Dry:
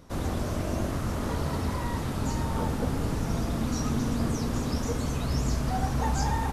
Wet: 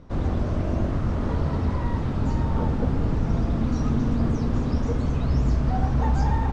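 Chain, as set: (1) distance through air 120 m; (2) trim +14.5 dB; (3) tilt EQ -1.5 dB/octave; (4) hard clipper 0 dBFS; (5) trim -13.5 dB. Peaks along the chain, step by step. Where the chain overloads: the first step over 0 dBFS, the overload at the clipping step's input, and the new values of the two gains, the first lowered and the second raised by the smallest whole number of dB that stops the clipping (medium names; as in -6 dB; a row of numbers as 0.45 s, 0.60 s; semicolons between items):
-15.5 dBFS, -1.0 dBFS, +3.5 dBFS, 0.0 dBFS, -13.5 dBFS; step 3, 3.5 dB; step 2 +10.5 dB, step 5 -9.5 dB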